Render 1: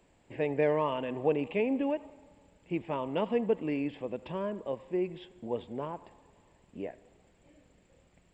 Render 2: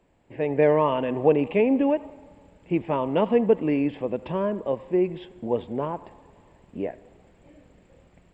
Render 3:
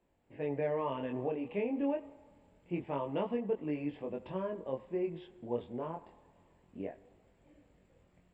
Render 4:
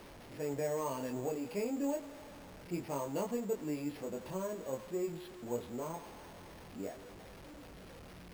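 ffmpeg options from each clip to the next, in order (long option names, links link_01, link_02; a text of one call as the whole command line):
ffmpeg -i in.wav -af "highshelf=frequency=3200:gain=-10,dynaudnorm=framelen=320:gausssize=3:maxgain=8dB,volume=1dB" out.wav
ffmpeg -i in.wav -af "alimiter=limit=-13dB:level=0:latency=1:release=492,flanger=delay=20:depth=5:speed=0.27,volume=-8dB" out.wav
ffmpeg -i in.wav -af "aeval=exprs='val(0)+0.5*0.00631*sgn(val(0))':channel_layout=same,acrusher=samples=6:mix=1:aa=0.000001,volume=-3dB" out.wav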